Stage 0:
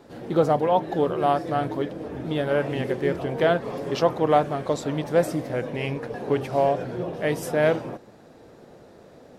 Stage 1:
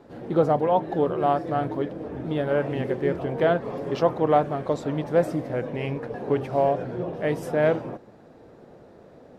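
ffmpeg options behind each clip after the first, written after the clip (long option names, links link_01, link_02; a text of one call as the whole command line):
ffmpeg -i in.wav -af "highshelf=frequency=2900:gain=-10.5" out.wav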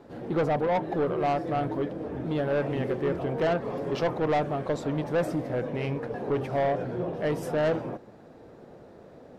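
ffmpeg -i in.wav -af "asoftclip=type=tanh:threshold=-20.5dB" out.wav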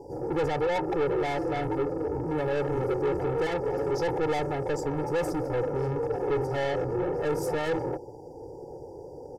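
ffmpeg -i in.wav -af "afftfilt=real='re*(1-between(b*sr/4096,1000,4600))':imag='im*(1-between(b*sr/4096,1000,4600))':win_size=4096:overlap=0.75,asoftclip=type=tanh:threshold=-32dB,aecho=1:1:2.3:0.9,volume=4.5dB" out.wav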